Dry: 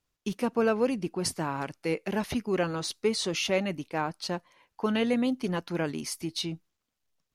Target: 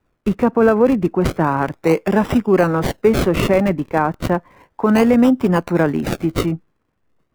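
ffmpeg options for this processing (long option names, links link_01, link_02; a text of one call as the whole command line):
ffmpeg -i in.wav -filter_complex "[0:a]acrossover=split=270|1600|1900[link_01][link_02][link_03][link_04];[link_04]acrusher=samples=40:mix=1:aa=0.000001:lfo=1:lforange=40:lforate=0.33[link_05];[link_01][link_02][link_03][link_05]amix=inputs=4:normalize=0,alimiter=level_in=17.5dB:limit=-1dB:release=50:level=0:latency=1,volume=-3dB" out.wav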